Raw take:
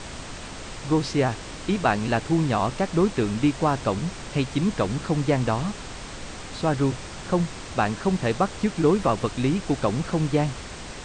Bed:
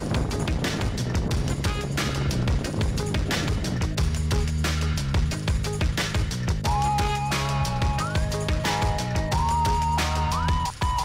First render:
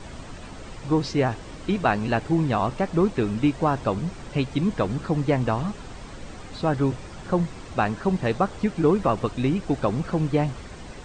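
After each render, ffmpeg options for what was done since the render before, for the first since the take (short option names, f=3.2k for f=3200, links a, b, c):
-af "afftdn=nr=9:nf=-38"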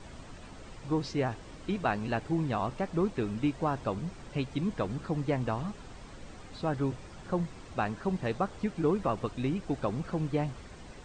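-af "volume=-8dB"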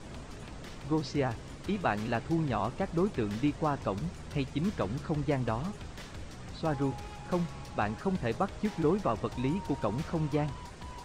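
-filter_complex "[1:a]volume=-21.5dB[a];[0:a][a]amix=inputs=2:normalize=0"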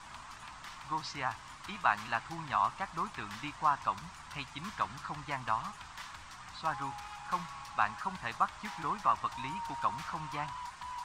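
-af "lowshelf=f=690:t=q:w=3:g=-13.5"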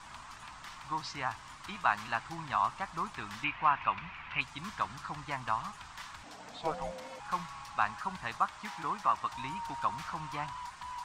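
-filter_complex "[0:a]asettb=1/sr,asplit=3[a][b][c];[a]atrim=end=3.444[d];[b]atrim=start=3.44:end=4.41,asetpts=PTS-STARTPTS,afade=t=in:d=0.004:c=qsin,afade=t=out:st=0.966:d=0.004:c=qsin,lowpass=f=2.5k:t=q:w=4.1[e];[c]atrim=start=4.406[f];[d][e]acrossfade=d=0.004:c1=hsin:c2=qsin[g];[g][f]acrossfade=d=0.004:c1=qsin:c2=hsin,asettb=1/sr,asplit=3[h][i][j];[h]atrim=end=6.234[k];[i]atrim=start=6.23:end=7.2,asetpts=PTS-STARTPTS,afade=t=in:d=0.004:c=qsin,afade=t=out:st=0.966:d=0.004:c=qsin,afreqshift=-310[l];[j]atrim=start=7.196[m];[k][l]acrossfade=d=0.004:c1=hsin:c2=qsin[n];[n][m]acrossfade=d=0.004:c1=qsin:c2=hsin,asettb=1/sr,asplit=3[o][p][q];[o]atrim=end=8.384[r];[p]atrim=start=8.38:end=9.33,asetpts=PTS-STARTPTS,afade=t=in:d=0.004:c=qsin,afade=t=out:st=0.946:d=0.004:c=qsin,lowshelf=f=95:g=-10[s];[q]atrim=start=9.326[t];[r][s]acrossfade=d=0.004:c1=hsin:c2=qsin[u];[u][t]acrossfade=d=0.004:c1=qsin:c2=hsin"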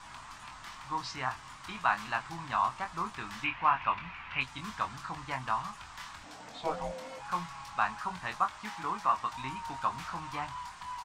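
-filter_complex "[0:a]asplit=2[a][b];[b]adelay=23,volume=-6dB[c];[a][c]amix=inputs=2:normalize=0"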